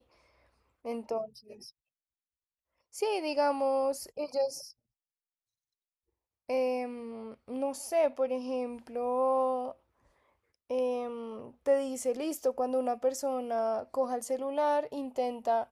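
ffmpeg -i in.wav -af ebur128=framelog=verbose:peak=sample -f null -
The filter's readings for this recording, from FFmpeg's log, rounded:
Integrated loudness:
  I:         -32.0 LUFS
  Threshold: -42.7 LUFS
Loudness range:
  LRA:         5.3 LU
  Threshold: -53.5 LUFS
  LRA low:   -37.0 LUFS
  LRA high:  -31.6 LUFS
Sample peak:
  Peak:      -16.5 dBFS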